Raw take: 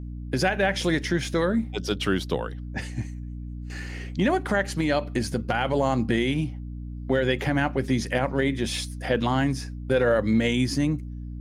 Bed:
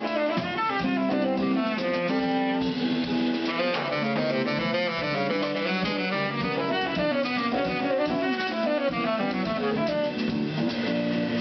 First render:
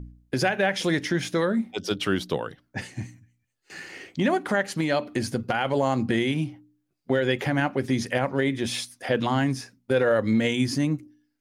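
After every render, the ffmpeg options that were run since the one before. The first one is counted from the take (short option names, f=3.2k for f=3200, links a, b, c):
-af "bandreject=f=60:t=h:w=4,bandreject=f=120:t=h:w=4,bandreject=f=180:t=h:w=4,bandreject=f=240:t=h:w=4,bandreject=f=300:t=h:w=4"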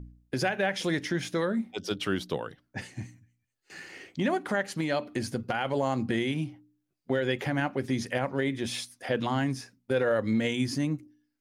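-af "volume=-4.5dB"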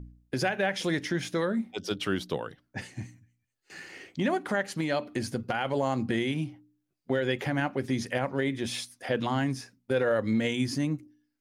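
-af anull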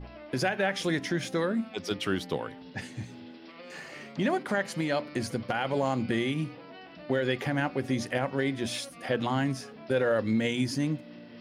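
-filter_complex "[1:a]volume=-21dB[a];[0:a][a]amix=inputs=2:normalize=0"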